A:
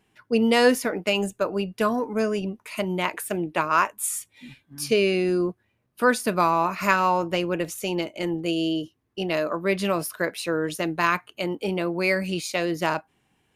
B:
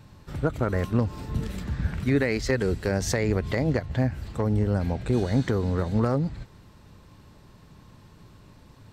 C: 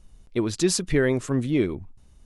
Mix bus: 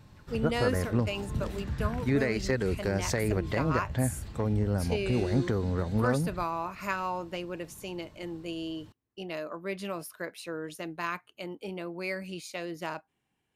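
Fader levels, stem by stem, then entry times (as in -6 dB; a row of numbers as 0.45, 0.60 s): -11.5 dB, -4.0 dB, off; 0.00 s, 0.00 s, off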